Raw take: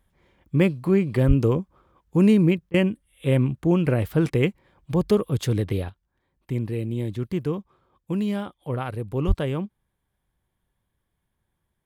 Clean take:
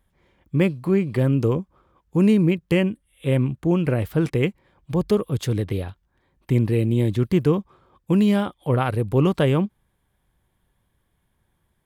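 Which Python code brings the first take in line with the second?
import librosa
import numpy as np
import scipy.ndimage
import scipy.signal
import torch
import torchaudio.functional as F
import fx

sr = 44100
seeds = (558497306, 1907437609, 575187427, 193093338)

y = fx.highpass(x, sr, hz=140.0, slope=24, at=(1.27, 1.39), fade=0.02)
y = fx.highpass(y, sr, hz=140.0, slope=24, at=(9.27, 9.39), fade=0.02)
y = fx.fix_interpolate(y, sr, at_s=(2.7,), length_ms=39.0)
y = fx.gain(y, sr, db=fx.steps((0.0, 0.0), (5.89, 7.5)))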